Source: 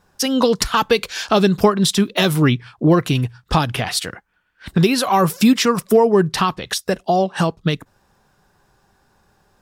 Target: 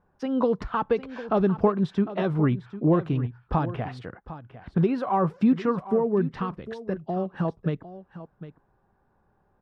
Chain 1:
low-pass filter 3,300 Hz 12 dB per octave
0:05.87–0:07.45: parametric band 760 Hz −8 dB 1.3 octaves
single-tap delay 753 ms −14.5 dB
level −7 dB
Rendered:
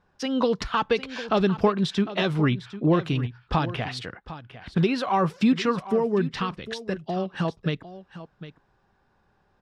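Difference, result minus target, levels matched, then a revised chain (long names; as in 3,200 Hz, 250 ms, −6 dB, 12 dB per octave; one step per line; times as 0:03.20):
4,000 Hz band +14.5 dB
low-pass filter 1,200 Hz 12 dB per octave
0:05.87–0:07.45: parametric band 760 Hz −8 dB 1.3 octaves
single-tap delay 753 ms −14.5 dB
level −7 dB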